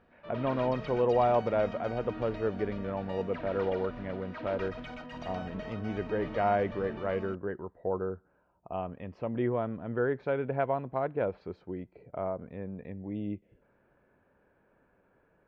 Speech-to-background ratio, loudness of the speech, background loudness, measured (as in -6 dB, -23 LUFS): 9.5 dB, -33.0 LUFS, -42.5 LUFS